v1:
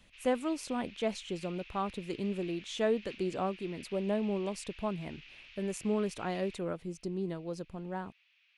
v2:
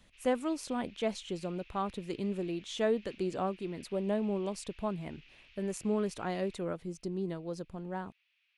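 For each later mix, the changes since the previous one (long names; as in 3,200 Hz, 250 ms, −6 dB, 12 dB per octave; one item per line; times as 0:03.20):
background −6.5 dB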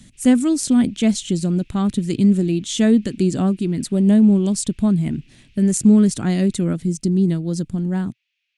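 speech +12.0 dB
master: add octave-band graphic EQ 125/250/500/1,000/8,000 Hz +10/+10/−8/−9/+11 dB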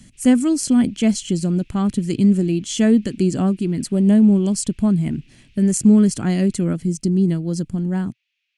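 speech: add Butterworth band-reject 3,700 Hz, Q 7.7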